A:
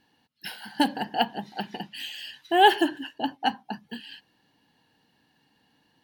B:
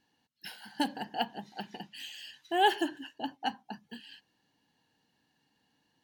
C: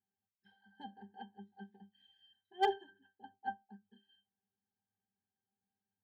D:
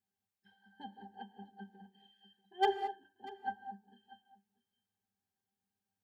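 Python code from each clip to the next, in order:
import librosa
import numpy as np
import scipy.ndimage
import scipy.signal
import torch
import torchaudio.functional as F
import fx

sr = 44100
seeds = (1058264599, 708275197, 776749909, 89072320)

y1 = fx.peak_eq(x, sr, hz=6700.0, db=7.0, octaves=0.59)
y1 = y1 * librosa.db_to_amplitude(-8.0)
y2 = fx.octave_resonator(y1, sr, note='G', decay_s=0.16)
y2 = np.clip(10.0 ** (26.5 / 20.0) * y2, -1.0, 1.0) / 10.0 ** (26.5 / 20.0)
y2 = fx.upward_expand(y2, sr, threshold_db=-53.0, expansion=1.5)
y2 = y2 * librosa.db_to_amplitude(4.0)
y3 = y2 + 10.0 ** (-19.0 / 20.0) * np.pad(y2, (int(640 * sr / 1000.0), 0))[:len(y2)]
y3 = fx.rev_gated(y3, sr, seeds[0], gate_ms=240, shape='rising', drr_db=10.5)
y3 = y3 * librosa.db_to_amplitude(1.0)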